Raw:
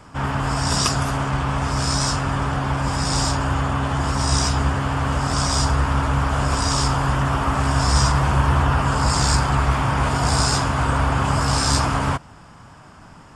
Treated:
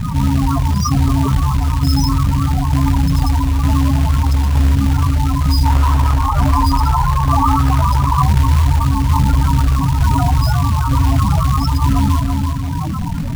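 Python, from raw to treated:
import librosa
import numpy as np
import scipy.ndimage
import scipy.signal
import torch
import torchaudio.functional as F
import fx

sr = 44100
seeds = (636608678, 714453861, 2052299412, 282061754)

y = fx.tremolo_shape(x, sr, shape='saw_down', hz=1.1, depth_pct=75)
y = fx.doubler(y, sr, ms=25.0, db=-3.5)
y = fx.echo_filtered(y, sr, ms=336, feedback_pct=21, hz=4400.0, wet_db=-12.5)
y = fx.spec_topn(y, sr, count=8)
y = fx.low_shelf(y, sr, hz=360.0, db=4.5)
y = fx.hum_notches(y, sr, base_hz=60, count=6)
y = fx.quant_float(y, sr, bits=2)
y = fx.peak_eq(y, sr, hz=950.0, db=8.5, octaves=1.1, at=(5.65, 8.23))
y = fx.env_flatten(y, sr, amount_pct=70)
y = y * 10.0 ** (3.0 / 20.0)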